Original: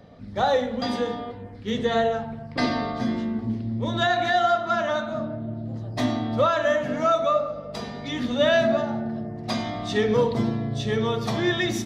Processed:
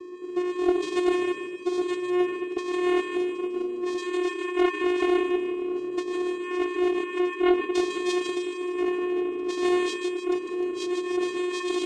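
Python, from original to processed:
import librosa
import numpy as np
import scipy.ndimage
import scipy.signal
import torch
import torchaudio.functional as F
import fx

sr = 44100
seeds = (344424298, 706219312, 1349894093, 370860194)

p1 = fx.high_shelf(x, sr, hz=6300.0, db=8.0)
p2 = fx.over_compress(p1, sr, threshold_db=-30.0, ratio=-1.0)
p3 = fx.vocoder(p2, sr, bands=4, carrier='square', carrier_hz=359.0)
p4 = p3 + fx.echo_thinned(p3, sr, ms=152, feedback_pct=50, hz=230.0, wet_db=-5, dry=0)
p5 = fx.doppler_dist(p4, sr, depth_ms=0.22)
y = p5 * librosa.db_to_amplitude(6.0)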